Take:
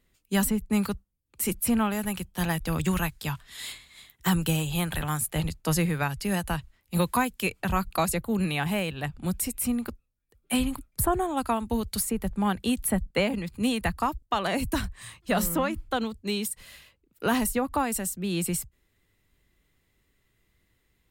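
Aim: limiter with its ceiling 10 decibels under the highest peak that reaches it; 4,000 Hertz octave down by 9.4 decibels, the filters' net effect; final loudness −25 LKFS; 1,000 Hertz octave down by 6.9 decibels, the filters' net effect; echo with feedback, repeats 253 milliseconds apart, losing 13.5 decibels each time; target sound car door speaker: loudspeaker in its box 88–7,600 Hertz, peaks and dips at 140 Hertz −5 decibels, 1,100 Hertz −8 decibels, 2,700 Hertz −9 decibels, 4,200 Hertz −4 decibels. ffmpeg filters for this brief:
ffmpeg -i in.wav -af "equalizer=frequency=1000:width_type=o:gain=-6,equalizer=frequency=4000:width_type=o:gain=-6,alimiter=level_in=0.5dB:limit=-24dB:level=0:latency=1,volume=-0.5dB,highpass=88,equalizer=frequency=140:width_type=q:width=4:gain=-5,equalizer=frequency=1100:width_type=q:width=4:gain=-8,equalizer=frequency=2700:width_type=q:width=4:gain=-9,equalizer=frequency=4200:width_type=q:width=4:gain=-4,lowpass=frequency=7600:width=0.5412,lowpass=frequency=7600:width=1.3066,aecho=1:1:253|506:0.211|0.0444,volume=11dB" out.wav

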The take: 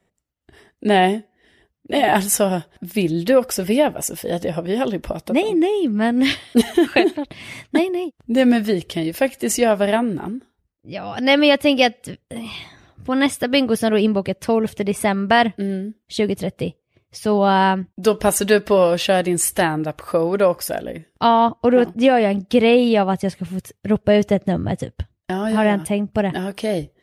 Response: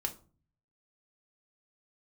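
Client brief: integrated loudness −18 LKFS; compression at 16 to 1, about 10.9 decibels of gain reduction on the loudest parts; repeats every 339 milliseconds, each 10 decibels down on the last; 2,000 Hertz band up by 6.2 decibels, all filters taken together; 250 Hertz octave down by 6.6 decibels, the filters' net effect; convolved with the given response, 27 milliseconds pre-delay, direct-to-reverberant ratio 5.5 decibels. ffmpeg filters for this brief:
-filter_complex "[0:a]equalizer=frequency=250:width_type=o:gain=-8.5,equalizer=frequency=2000:width_type=o:gain=7.5,acompressor=threshold=-18dB:ratio=16,aecho=1:1:339|678|1017|1356:0.316|0.101|0.0324|0.0104,asplit=2[link_01][link_02];[1:a]atrim=start_sample=2205,adelay=27[link_03];[link_02][link_03]afir=irnorm=-1:irlink=0,volume=-7dB[link_04];[link_01][link_04]amix=inputs=2:normalize=0,volume=5dB"

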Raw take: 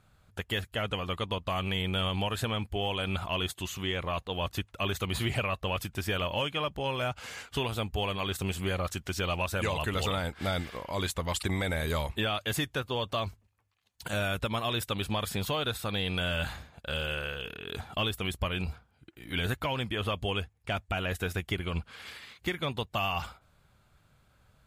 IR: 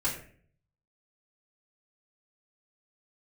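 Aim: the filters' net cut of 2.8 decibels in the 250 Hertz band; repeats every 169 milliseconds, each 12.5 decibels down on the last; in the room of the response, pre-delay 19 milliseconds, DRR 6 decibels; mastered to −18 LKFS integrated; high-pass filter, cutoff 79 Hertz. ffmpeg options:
-filter_complex "[0:a]highpass=79,equalizer=frequency=250:width_type=o:gain=-4,aecho=1:1:169|338|507:0.237|0.0569|0.0137,asplit=2[link_01][link_02];[1:a]atrim=start_sample=2205,adelay=19[link_03];[link_02][link_03]afir=irnorm=-1:irlink=0,volume=-13dB[link_04];[link_01][link_04]amix=inputs=2:normalize=0,volume=13.5dB"

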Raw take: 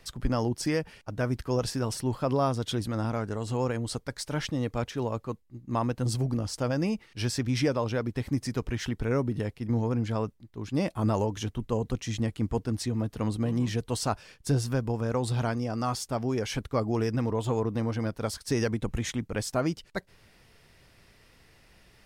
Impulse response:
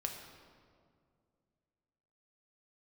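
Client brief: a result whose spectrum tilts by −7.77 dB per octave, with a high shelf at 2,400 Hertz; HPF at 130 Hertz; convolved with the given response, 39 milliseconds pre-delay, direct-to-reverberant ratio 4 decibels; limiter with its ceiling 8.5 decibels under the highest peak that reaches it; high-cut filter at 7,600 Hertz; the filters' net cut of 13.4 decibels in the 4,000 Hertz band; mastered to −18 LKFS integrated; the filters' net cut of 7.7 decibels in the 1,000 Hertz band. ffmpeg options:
-filter_complex "[0:a]highpass=130,lowpass=7600,equalizer=frequency=1000:width_type=o:gain=-8.5,highshelf=frequency=2400:gain=-8.5,equalizer=frequency=4000:width_type=o:gain=-9,alimiter=level_in=1.5dB:limit=-24dB:level=0:latency=1,volume=-1.5dB,asplit=2[link_01][link_02];[1:a]atrim=start_sample=2205,adelay=39[link_03];[link_02][link_03]afir=irnorm=-1:irlink=0,volume=-4.5dB[link_04];[link_01][link_04]amix=inputs=2:normalize=0,volume=17dB"

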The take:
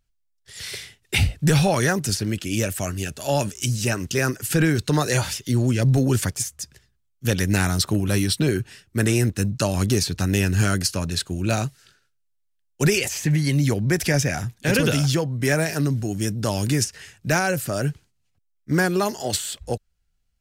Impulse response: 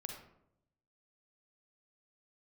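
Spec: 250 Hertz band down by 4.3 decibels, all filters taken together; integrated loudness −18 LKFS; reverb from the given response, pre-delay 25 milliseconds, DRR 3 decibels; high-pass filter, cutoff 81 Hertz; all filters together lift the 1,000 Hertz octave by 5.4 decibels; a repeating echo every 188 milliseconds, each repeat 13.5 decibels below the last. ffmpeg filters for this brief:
-filter_complex "[0:a]highpass=81,equalizer=frequency=250:width_type=o:gain=-7,equalizer=frequency=1000:width_type=o:gain=8,aecho=1:1:188|376:0.211|0.0444,asplit=2[link_01][link_02];[1:a]atrim=start_sample=2205,adelay=25[link_03];[link_02][link_03]afir=irnorm=-1:irlink=0,volume=-0.5dB[link_04];[link_01][link_04]amix=inputs=2:normalize=0,volume=3dB"

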